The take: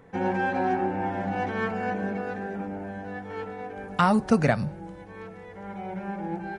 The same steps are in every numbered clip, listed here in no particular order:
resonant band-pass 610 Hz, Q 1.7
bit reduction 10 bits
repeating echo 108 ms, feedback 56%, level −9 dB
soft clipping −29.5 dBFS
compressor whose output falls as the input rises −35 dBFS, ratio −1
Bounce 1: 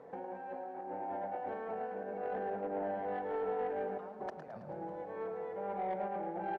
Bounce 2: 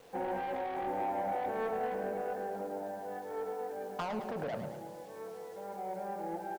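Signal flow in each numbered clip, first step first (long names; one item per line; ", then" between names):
compressor whose output falls as the input rises, then bit reduction, then resonant band-pass, then soft clipping, then repeating echo
resonant band-pass, then bit reduction, then soft clipping, then compressor whose output falls as the input rises, then repeating echo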